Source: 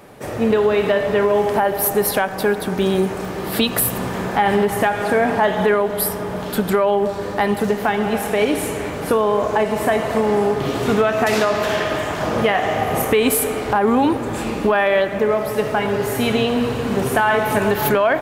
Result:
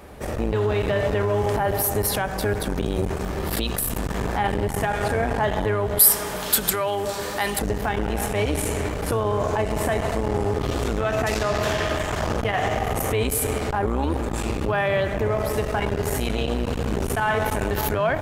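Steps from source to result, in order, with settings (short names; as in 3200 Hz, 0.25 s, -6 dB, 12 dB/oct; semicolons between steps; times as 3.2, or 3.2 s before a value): octaver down 2 oct, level +3 dB; dynamic EQ 7000 Hz, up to +5 dB, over -42 dBFS, Q 0.88; limiter -11.5 dBFS, peak gain reduction 9.5 dB; 5.99–7.59 tilt +3.5 dB/oct; core saturation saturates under 810 Hz; gain -1 dB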